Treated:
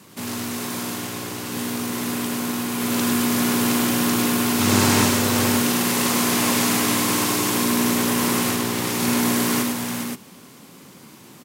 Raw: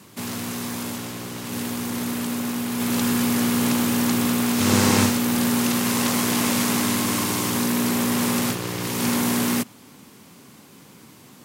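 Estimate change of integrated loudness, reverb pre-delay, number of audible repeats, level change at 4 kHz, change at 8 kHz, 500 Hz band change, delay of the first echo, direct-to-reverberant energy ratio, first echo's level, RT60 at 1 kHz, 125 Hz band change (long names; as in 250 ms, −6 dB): +1.5 dB, no reverb audible, 4, +3.0 dB, +3.0 dB, +2.5 dB, 41 ms, no reverb audible, −8.5 dB, no reverb audible, +0.5 dB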